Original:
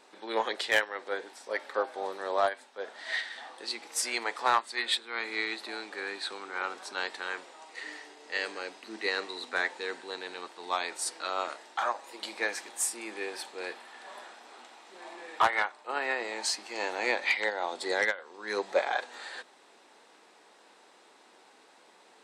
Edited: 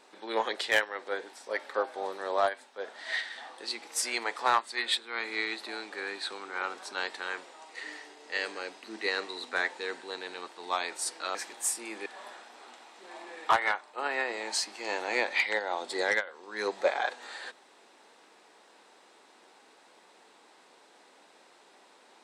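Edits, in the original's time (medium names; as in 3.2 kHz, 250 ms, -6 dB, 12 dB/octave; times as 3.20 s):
11.35–12.51 s: delete
13.22–13.97 s: delete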